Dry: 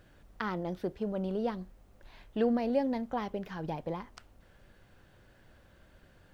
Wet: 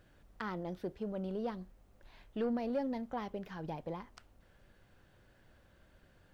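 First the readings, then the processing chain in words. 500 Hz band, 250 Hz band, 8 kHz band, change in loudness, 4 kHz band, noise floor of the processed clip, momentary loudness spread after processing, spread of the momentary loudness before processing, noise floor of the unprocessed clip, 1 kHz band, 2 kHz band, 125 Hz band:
-6.0 dB, -5.5 dB, n/a, -5.5 dB, -5.5 dB, -66 dBFS, 11 LU, 12 LU, -62 dBFS, -5.5 dB, -5.5 dB, -5.0 dB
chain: soft clip -21.5 dBFS, distortion -19 dB; gain -4.5 dB

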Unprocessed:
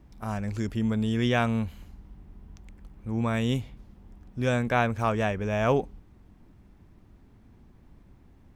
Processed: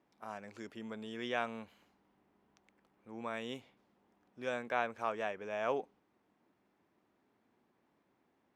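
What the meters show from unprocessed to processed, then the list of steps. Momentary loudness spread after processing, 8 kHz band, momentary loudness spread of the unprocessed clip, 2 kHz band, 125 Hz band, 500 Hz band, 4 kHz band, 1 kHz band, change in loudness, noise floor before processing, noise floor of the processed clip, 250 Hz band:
13 LU, -14.0 dB, 11 LU, -9.0 dB, -29.0 dB, -10.0 dB, -10.5 dB, -9.0 dB, -12.5 dB, -56 dBFS, -77 dBFS, -18.0 dB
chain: HPF 400 Hz 12 dB/oct; high shelf 6600 Hz -11 dB; gain -8.5 dB

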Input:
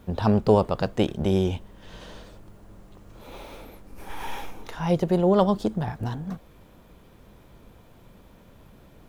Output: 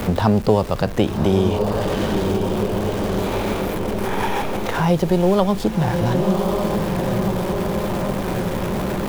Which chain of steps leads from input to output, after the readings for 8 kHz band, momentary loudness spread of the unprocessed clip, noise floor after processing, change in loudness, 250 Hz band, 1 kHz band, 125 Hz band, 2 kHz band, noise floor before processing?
+15.0 dB, 22 LU, -26 dBFS, +4.0 dB, +7.5 dB, +8.0 dB, +8.0 dB, +12.5 dB, -53 dBFS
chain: zero-crossing step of -33.5 dBFS; diffused feedback echo 1.08 s, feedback 56%, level -7 dB; three-band squash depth 70%; gain +5 dB

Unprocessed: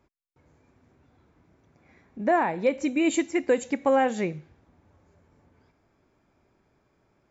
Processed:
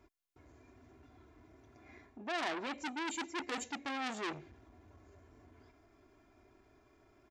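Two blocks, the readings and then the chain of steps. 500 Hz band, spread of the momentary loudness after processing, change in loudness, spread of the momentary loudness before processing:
-20.0 dB, 20 LU, -14.0 dB, 8 LU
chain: comb 2.9 ms, depth 75%; reverse; compressor 8:1, threshold -29 dBFS, peak gain reduction 15.5 dB; reverse; core saturation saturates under 3300 Hz

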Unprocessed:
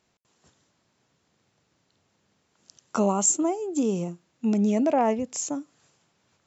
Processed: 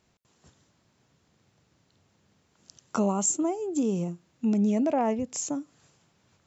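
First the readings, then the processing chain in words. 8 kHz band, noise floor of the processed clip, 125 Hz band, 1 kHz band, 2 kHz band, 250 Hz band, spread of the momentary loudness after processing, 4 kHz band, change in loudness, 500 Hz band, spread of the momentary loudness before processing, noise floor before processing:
n/a, -69 dBFS, -0.5 dB, -4.0 dB, -3.5 dB, -1.0 dB, 9 LU, -3.0 dB, -2.5 dB, -3.0 dB, 11 LU, -72 dBFS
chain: low shelf 170 Hz +8.5 dB; in parallel at +2 dB: compressor, threshold -32 dBFS, peak gain reduction 15.5 dB; on the sum: gain -6.5 dB

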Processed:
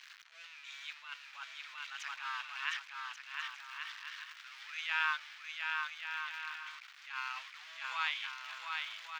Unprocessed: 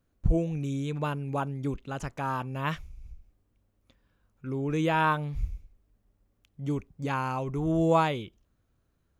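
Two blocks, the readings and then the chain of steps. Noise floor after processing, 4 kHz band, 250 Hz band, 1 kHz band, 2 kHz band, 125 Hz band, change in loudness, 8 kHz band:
-56 dBFS, +4.0 dB, under -40 dB, -11.0 dB, +1.0 dB, under -40 dB, -10.0 dB, -3.0 dB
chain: zero-crossing step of -36 dBFS; Bessel high-pass 2400 Hz, order 6; air absorption 220 m; bouncing-ball echo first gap 0.71 s, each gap 0.6×, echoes 5; attack slew limiter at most 110 dB/s; gain +7 dB

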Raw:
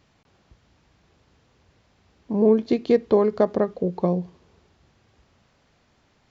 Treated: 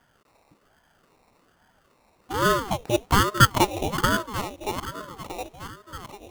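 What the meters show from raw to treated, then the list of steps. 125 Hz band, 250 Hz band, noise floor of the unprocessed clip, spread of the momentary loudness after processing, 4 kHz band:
+5.0 dB, -5.5 dB, -64 dBFS, 21 LU, n/a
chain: regenerating reverse delay 0.631 s, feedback 60%, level -10.5 dB; band shelf 780 Hz +12.5 dB 1.1 oct; sample-rate reducer 3200 Hz, jitter 0%; ring modulator with a swept carrier 480 Hz, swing 75%, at 1.2 Hz; gain -3 dB

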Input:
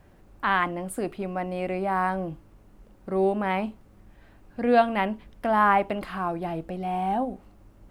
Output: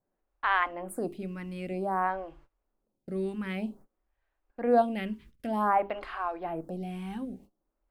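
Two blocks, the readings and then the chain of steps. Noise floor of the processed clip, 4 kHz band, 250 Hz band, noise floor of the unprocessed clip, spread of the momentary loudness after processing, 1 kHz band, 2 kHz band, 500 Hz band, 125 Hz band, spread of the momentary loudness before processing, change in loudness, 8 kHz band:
-83 dBFS, -5.5 dB, -4.5 dB, -55 dBFS, 13 LU, -5.5 dB, -5.0 dB, -5.0 dB, -5.5 dB, 12 LU, -5.0 dB, n/a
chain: notches 50/100/150/200/250/300/350/400 Hz; gate -46 dBFS, range -21 dB; photocell phaser 0.53 Hz; gain -2 dB

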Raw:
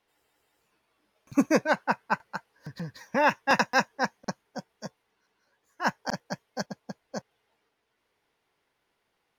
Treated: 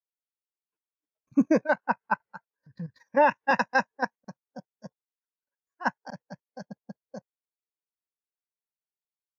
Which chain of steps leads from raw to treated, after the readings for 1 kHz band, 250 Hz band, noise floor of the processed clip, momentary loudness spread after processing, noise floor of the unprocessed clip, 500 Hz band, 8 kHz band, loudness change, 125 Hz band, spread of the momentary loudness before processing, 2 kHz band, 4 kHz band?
+0.5 dB, +1.0 dB, under -85 dBFS, 22 LU, -77 dBFS, +1.5 dB, under -10 dB, +1.5 dB, -3.0 dB, 18 LU, -1.0 dB, -9.0 dB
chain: level quantiser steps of 12 dB; spectral expander 1.5:1

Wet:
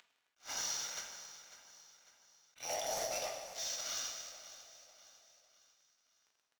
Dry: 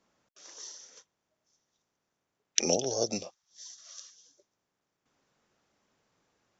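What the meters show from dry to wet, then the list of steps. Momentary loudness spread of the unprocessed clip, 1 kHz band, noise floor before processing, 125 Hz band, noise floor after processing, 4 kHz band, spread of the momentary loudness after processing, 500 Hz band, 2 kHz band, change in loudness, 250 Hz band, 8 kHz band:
21 LU, +0.5 dB, -84 dBFS, -18.0 dB, -81 dBFS, -3.0 dB, 20 LU, -9.0 dB, +1.0 dB, -8.5 dB, -22.0 dB, n/a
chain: HPF 660 Hz 24 dB/oct; comb 1.4 ms, depth 69%; compressor 5:1, threshold -41 dBFS, peak gain reduction 21 dB; sample leveller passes 3; upward compressor, threshold -39 dBFS; crossover distortion -49.5 dBFS; overdrive pedal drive 16 dB, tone 2100 Hz, clips at -16.5 dBFS; soft clip -36.5 dBFS, distortion -7 dB; feedback echo 0.548 s, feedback 44%, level -14.5 dB; plate-style reverb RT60 1.6 s, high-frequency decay 0.85×, DRR 1.5 dB; attack slew limiter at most 290 dB/s

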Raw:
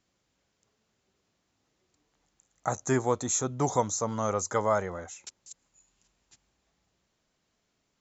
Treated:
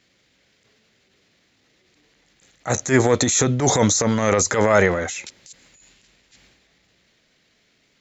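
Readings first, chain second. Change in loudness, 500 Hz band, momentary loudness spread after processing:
+10.5 dB, +10.0 dB, 10 LU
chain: transient shaper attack -11 dB, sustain +7 dB; ten-band EQ 125 Hz +3 dB, 250 Hz +4 dB, 500 Hz +5 dB, 1000 Hz -4 dB, 2000 Hz +11 dB, 4000 Hz +8 dB; gain +7.5 dB

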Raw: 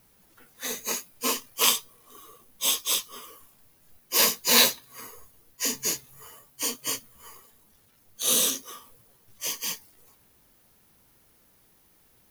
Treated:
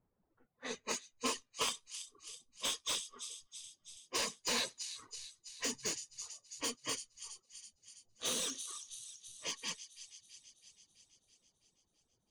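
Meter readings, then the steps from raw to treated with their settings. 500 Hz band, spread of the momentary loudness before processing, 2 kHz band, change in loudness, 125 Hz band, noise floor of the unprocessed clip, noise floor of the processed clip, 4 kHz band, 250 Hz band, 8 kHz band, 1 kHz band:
-10.0 dB, 18 LU, -11.5 dB, -15.0 dB, -9.0 dB, -62 dBFS, -81 dBFS, -12.0 dB, -10.0 dB, -12.5 dB, -10.0 dB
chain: G.711 law mismatch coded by A; low-pass opened by the level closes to 890 Hz, open at -24.5 dBFS; reverb removal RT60 0.92 s; compressor 16:1, threshold -25 dBFS, peak gain reduction 11.5 dB; on a send: thin delay 0.329 s, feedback 62%, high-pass 3900 Hz, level -9.5 dB; on the sum: downsampling 22050 Hz; slew limiter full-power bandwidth 200 Hz; gain -4 dB

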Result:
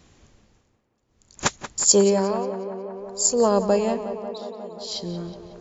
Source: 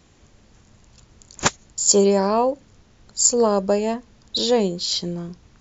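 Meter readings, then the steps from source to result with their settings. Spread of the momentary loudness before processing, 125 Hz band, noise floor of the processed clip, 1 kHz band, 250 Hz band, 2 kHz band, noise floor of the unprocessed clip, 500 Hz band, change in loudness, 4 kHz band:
16 LU, -2.0 dB, -70 dBFS, -3.5 dB, -2.0 dB, -3.0 dB, -55 dBFS, -2.0 dB, -2.5 dB, -5.5 dB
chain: tremolo 0.55 Hz, depth 98%; on a send: tape echo 0.18 s, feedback 84%, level -10.5 dB, low-pass 2800 Hz

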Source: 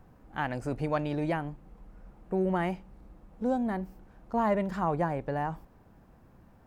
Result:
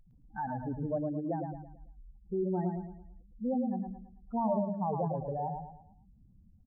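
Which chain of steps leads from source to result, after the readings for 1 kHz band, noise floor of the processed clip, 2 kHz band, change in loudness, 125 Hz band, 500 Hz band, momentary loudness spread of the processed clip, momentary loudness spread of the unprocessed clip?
-4.0 dB, -61 dBFS, under -15 dB, -3.0 dB, -2.5 dB, -3.5 dB, 15 LU, 14 LU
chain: spectral contrast raised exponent 3.5; feedback echo 0.11 s, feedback 38%, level -5 dB; gain -3.5 dB

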